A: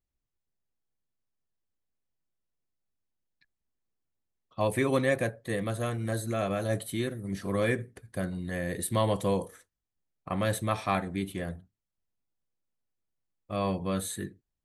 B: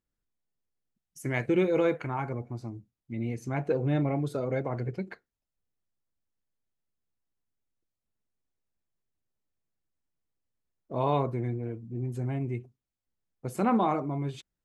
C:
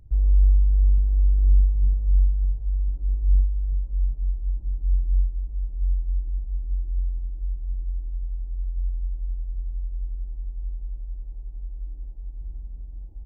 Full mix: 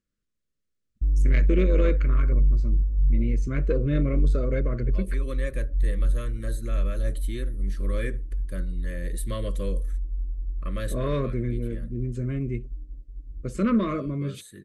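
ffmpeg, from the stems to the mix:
-filter_complex "[0:a]adelay=350,volume=-4.5dB[a];[1:a]lowpass=f=9.1k:w=0.5412,lowpass=f=9.1k:w=1.3066,equalizer=f=210:t=o:w=0.44:g=5,volume=2.5dB,asplit=2[b][c];[2:a]agate=range=-33dB:threshold=-29dB:ratio=3:detection=peak,equalizer=f=280:t=o:w=0.3:g=11.5,adelay=900,volume=-0.5dB[d];[c]apad=whole_len=661393[e];[a][e]sidechaincompress=threshold=-32dB:ratio=4:attack=16:release=959[f];[f][b][d]amix=inputs=3:normalize=0,asoftclip=type=tanh:threshold=-13dB,asuperstop=centerf=820:order=8:qfactor=1.8"

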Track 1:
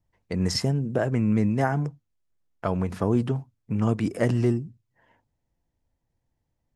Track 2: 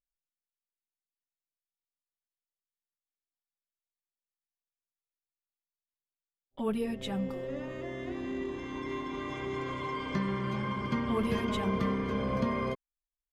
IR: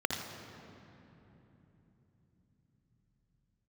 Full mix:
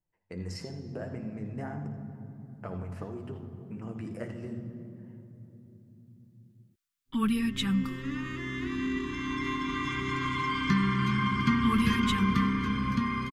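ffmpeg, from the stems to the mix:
-filter_complex "[0:a]acompressor=threshold=-25dB:ratio=6,flanger=delay=5.1:depth=7.1:regen=41:speed=1.6:shape=sinusoidal,volume=-11.5dB,asplit=2[a][b];[b]volume=-5dB[c];[1:a]firequalizer=gain_entry='entry(280,0);entry(580,-30);entry(1100,2)':delay=0.05:min_phase=1,dynaudnorm=f=100:g=31:m=5dB,adelay=550,volume=1.5dB[d];[2:a]atrim=start_sample=2205[e];[c][e]afir=irnorm=-1:irlink=0[f];[a][d][f]amix=inputs=3:normalize=0"

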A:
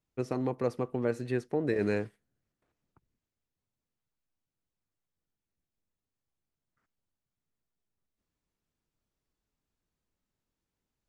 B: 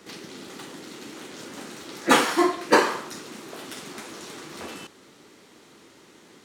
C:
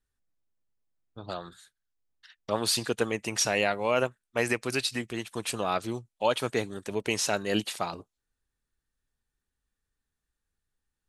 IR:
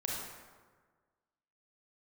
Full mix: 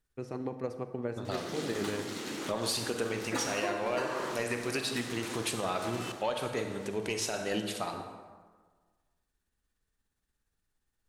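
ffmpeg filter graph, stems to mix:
-filter_complex "[0:a]volume=-5.5dB,asplit=2[a][b];[b]volume=-11.5dB[c];[1:a]acompressor=threshold=-31dB:ratio=2,adelay=1250,volume=0dB,asplit=2[d][e];[e]volume=-11dB[f];[2:a]asoftclip=type=tanh:threshold=-15.5dB,volume=1dB,asplit=3[g][h][i];[h]volume=-10dB[j];[i]apad=whole_len=339440[k];[d][k]sidechaincompress=threshold=-39dB:ratio=3:attack=16:release=171[l];[a][g]amix=inputs=2:normalize=0,tremolo=f=17:d=0.47,alimiter=limit=-24dB:level=0:latency=1:release=487,volume=0dB[m];[3:a]atrim=start_sample=2205[n];[c][f][j]amix=inputs=3:normalize=0[o];[o][n]afir=irnorm=-1:irlink=0[p];[l][m][p]amix=inputs=3:normalize=0,alimiter=limit=-21.5dB:level=0:latency=1:release=304"

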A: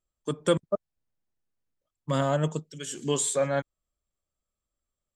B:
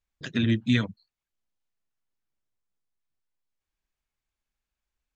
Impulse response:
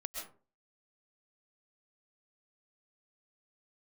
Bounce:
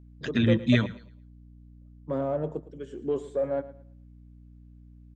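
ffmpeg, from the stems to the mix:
-filter_complex "[0:a]dynaudnorm=f=180:g=3:m=14.5dB,asoftclip=type=tanh:threshold=-10dB,bandpass=f=410:t=q:w=1.4:csg=0,volume=-7.5dB,asplit=2[a][b];[b]volume=-16.5dB[c];[1:a]volume=1dB,asplit=3[d][e][f];[e]volume=-23dB[g];[f]volume=-18dB[h];[2:a]atrim=start_sample=2205[i];[g][i]afir=irnorm=-1:irlink=0[j];[c][h]amix=inputs=2:normalize=0,aecho=0:1:111|222|333|444:1|0.26|0.0676|0.0176[k];[a][d][j][k]amix=inputs=4:normalize=0,highshelf=f=5.1k:g=-8.5,aeval=exprs='val(0)+0.00355*(sin(2*PI*60*n/s)+sin(2*PI*2*60*n/s)/2+sin(2*PI*3*60*n/s)/3+sin(2*PI*4*60*n/s)/4+sin(2*PI*5*60*n/s)/5)':c=same"

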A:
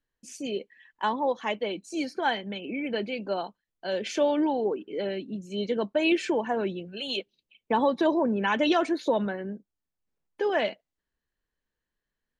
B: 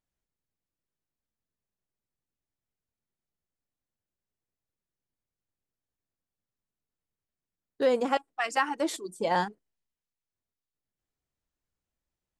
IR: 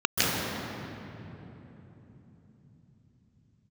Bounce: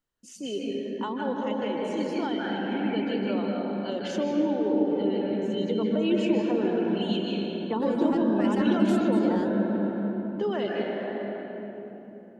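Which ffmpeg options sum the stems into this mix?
-filter_complex "[0:a]volume=-4dB,asplit=2[a][b];[b]volume=-14dB[c];[1:a]asoftclip=type=tanh:threshold=-17.5dB,volume=-1dB[d];[2:a]atrim=start_sample=2205[e];[c][e]afir=irnorm=-1:irlink=0[f];[a][d][f]amix=inputs=3:normalize=0,acrossover=split=460[g][h];[h]acompressor=threshold=-33dB:ratio=6[i];[g][i]amix=inputs=2:normalize=0,equalizer=f=1.4k:w=6.9:g=6"

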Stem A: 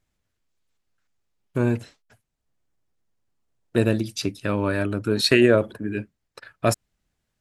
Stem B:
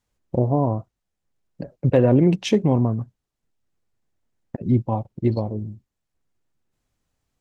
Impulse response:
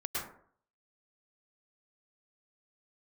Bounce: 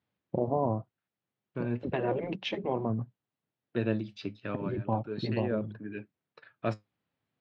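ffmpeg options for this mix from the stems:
-filter_complex "[0:a]flanger=delay=0.1:depth=9.7:regen=68:speed=0.36:shape=sinusoidal,volume=-6dB[a];[1:a]volume=-5dB,asplit=2[b][c];[c]apad=whole_len=326642[d];[a][d]sidechaincompress=threshold=-35dB:ratio=8:attack=49:release=349[e];[e][b]amix=inputs=2:normalize=0,highpass=f=110:w=0.5412,highpass=f=110:w=1.3066,afftfilt=real='re*lt(hypot(re,im),0.398)':imag='im*lt(hypot(re,im),0.398)':win_size=1024:overlap=0.75,lowpass=f=3.8k:w=0.5412,lowpass=f=3.8k:w=1.3066"

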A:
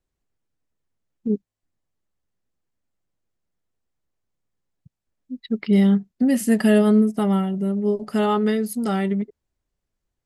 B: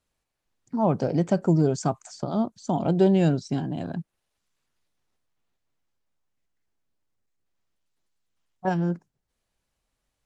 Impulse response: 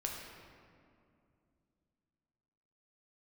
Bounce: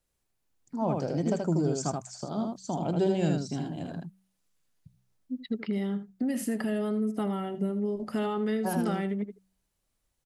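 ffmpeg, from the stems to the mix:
-filter_complex "[0:a]lowpass=f=1.9k:p=1,alimiter=limit=-17dB:level=0:latency=1:release=99,acrossover=split=340|1500[a][b][c];[a]acompressor=threshold=-29dB:ratio=4[d];[b]acompressor=threshold=-32dB:ratio=4[e];[c]acompressor=threshold=-41dB:ratio=4[f];[d][e][f]amix=inputs=3:normalize=0,volume=-1.5dB,asplit=2[g][h];[h]volume=-13.5dB[i];[1:a]volume=-7dB,asplit=2[j][k];[k]volume=-3.5dB[l];[i][l]amix=inputs=2:normalize=0,aecho=0:1:79:1[m];[g][j][m]amix=inputs=3:normalize=0,bandreject=f=63.33:t=h:w=4,bandreject=f=126.66:t=h:w=4,bandreject=f=189.99:t=h:w=4,crystalizer=i=1.5:c=0"

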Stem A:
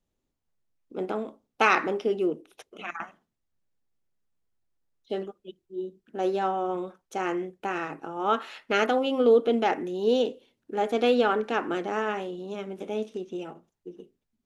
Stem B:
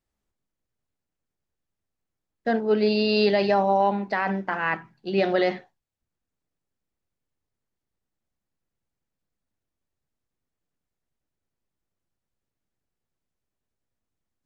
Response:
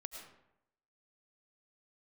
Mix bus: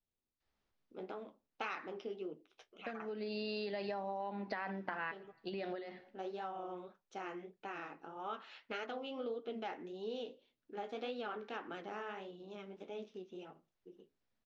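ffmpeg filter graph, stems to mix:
-filter_complex "[0:a]bass=f=250:g=4,treble=f=4k:g=3,flanger=delay=6.7:depth=9.6:regen=-40:speed=1.7:shape=sinusoidal,volume=-7.5dB,asplit=2[a][b];[1:a]adynamicequalizer=threshold=0.0316:dfrequency=260:dqfactor=0.73:tfrequency=260:tqfactor=0.73:attack=5:release=100:ratio=0.375:range=2:mode=boostabove:tftype=bell,acompressor=threshold=-28dB:ratio=6,adelay=400,volume=2dB,asplit=2[c][d];[d]volume=-22dB[e];[b]apad=whole_len=655168[f];[c][f]sidechaincompress=threshold=-53dB:ratio=8:attack=16:release=464[g];[2:a]atrim=start_sample=2205[h];[e][h]afir=irnorm=-1:irlink=0[i];[a][g][i]amix=inputs=3:normalize=0,lowpass=f=5.2k:w=0.5412,lowpass=f=5.2k:w=1.3066,lowshelf=f=410:g=-7.5,acompressor=threshold=-40dB:ratio=3"

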